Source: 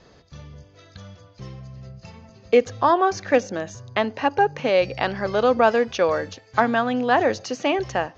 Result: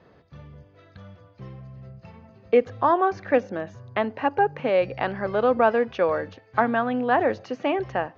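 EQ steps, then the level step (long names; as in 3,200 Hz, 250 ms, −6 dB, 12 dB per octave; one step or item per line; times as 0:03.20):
high-pass filter 72 Hz
low-pass filter 2,300 Hz 12 dB per octave
−2.0 dB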